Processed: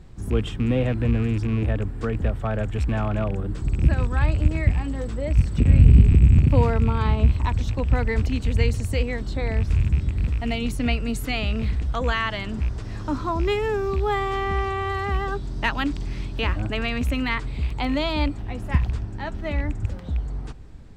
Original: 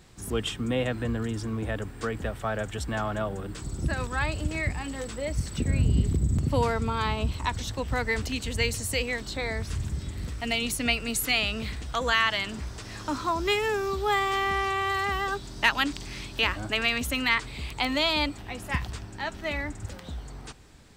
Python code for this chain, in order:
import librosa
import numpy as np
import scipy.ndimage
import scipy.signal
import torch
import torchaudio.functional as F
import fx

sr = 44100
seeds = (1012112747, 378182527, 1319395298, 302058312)

y = fx.rattle_buzz(x, sr, strikes_db=-30.0, level_db=-25.0)
y = fx.tilt_eq(y, sr, slope=-3.0)